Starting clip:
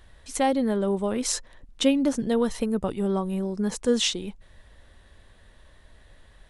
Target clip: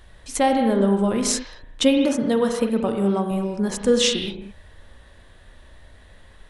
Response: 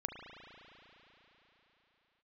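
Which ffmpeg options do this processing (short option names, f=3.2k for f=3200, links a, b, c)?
-filter_complex "[0:a]asettb=1/sr,asplit=3[a][b][c];[a]atrim=end=1.974[d];[b]atrim=start=1.97:end=3.31,asetpts=PTS-STARTPTS,afade=t=in:d=0.004:c=qsin,afade=t=out:st=1.336:d=0.004:c=qsin,highpass=f=130:p=1[e];[c]atrim=start=3.306[f];[d][e]acrossfade=d=0.004:c1=hsin:c2=qsin[g];[g][f]acrossfade=d=0.004:c1=qsin:c2=hsin[h];[1:a]atrim=start_sample=2205,afade=t=out:st=0.28:d=0.01,atrim=end_sample=12789[i];[h][i]afir=irnorm=-1:irlink=0,volume=6dB"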